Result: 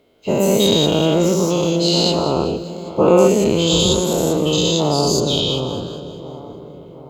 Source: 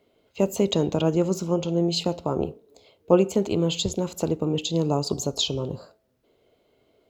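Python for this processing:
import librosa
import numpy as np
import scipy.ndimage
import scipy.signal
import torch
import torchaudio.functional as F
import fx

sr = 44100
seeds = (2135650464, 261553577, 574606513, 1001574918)

p1 = fx.spec_dilate(x, sr, span_ms=240)
p2 = fx.lowpass(p1, sr, hz=fx.line((5.19, 3600.0), (5.74, 2000.0)), slope=12, at=(5.19, 5.74), fade=0.02)
p3 = p2 + fx.echo_split(p2, sr, split_hz=1600.0, low_ms=719, high_ms=199, feedback_pct=52, wet_db=-13.0, dry=0)
y = p3 * librosa.db_to_amplitude(1.5)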